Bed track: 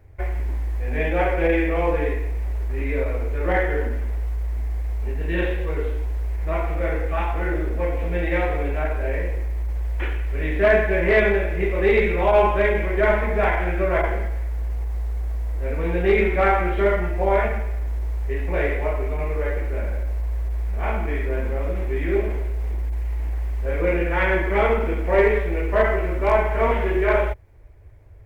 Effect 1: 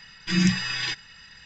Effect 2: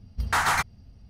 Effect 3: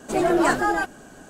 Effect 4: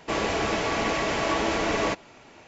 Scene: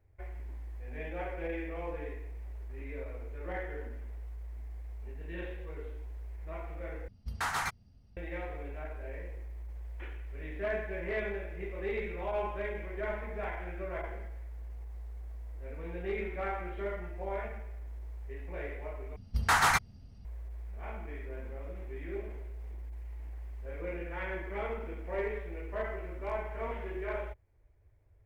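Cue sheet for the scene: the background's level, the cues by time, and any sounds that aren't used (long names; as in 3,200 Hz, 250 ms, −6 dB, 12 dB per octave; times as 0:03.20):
bed track −17.5 dB
0:07.08: overwrite with 2 −10 dB
0:19.16: overwrite with 2 −2 dB
not used: 1, 3, 4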